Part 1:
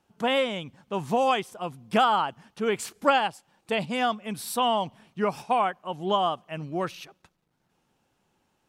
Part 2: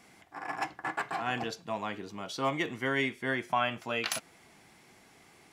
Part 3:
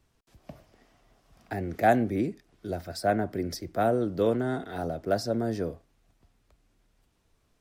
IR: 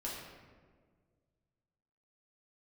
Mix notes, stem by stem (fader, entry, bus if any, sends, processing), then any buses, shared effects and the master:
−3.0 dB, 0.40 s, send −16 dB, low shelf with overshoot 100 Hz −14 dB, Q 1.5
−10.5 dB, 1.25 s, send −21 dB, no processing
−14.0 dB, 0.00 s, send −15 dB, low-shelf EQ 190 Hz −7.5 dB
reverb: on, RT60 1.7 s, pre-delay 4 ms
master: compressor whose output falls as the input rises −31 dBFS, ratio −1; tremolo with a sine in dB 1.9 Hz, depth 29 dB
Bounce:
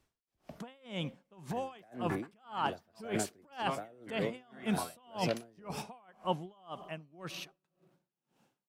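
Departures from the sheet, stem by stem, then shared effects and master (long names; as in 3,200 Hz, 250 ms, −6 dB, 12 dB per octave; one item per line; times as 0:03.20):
stem 3 −14.0 dB → −6.0 dB
reverb return −7.5 dB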